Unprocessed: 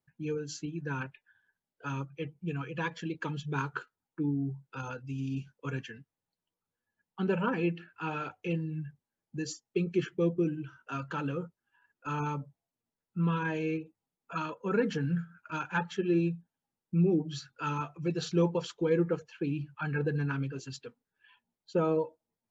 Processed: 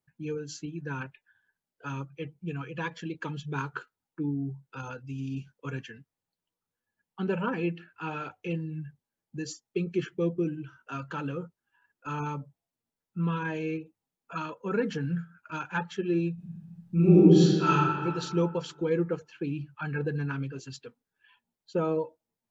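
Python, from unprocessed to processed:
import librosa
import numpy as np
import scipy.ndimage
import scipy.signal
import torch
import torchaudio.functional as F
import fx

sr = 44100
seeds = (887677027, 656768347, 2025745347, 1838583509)

y = fx.reverb_throw(x, sr, start_s=16.34, length_s=1.36, rt60_s=1.9, drr_db=-11.0)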